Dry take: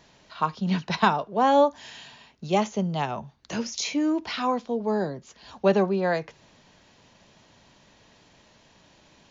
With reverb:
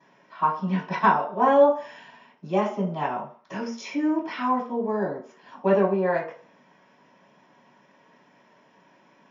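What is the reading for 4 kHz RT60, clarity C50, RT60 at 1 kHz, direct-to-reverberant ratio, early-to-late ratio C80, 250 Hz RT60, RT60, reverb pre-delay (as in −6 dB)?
0.45 s, 8.0 dB, 0.50 s, −14.5 dB, 13.5 dB, 0.35 s, 0.45 s, 3 ms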